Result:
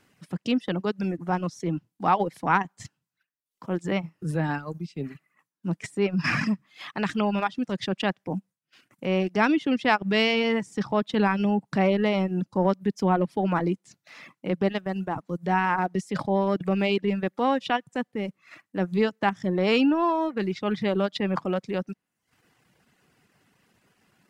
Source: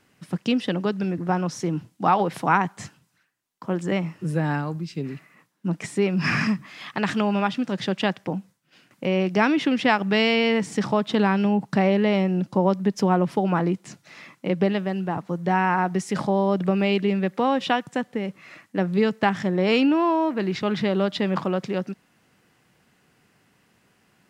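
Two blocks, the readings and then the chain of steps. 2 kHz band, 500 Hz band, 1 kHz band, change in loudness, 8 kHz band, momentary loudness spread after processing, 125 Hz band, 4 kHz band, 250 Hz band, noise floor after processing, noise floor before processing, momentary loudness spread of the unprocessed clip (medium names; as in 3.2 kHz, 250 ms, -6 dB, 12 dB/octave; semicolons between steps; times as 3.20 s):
-2.0 dB, -2.5 dB, -2.0 dB, -2.5 dB, no reading, 11 LU, -3.5 dB, -2.5 dB, -3.0 dB, -83 dBFS, -64 dBFS, 11 LU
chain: transient shaper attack -5 dB, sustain -9 dB; reverb removal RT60 0.76 s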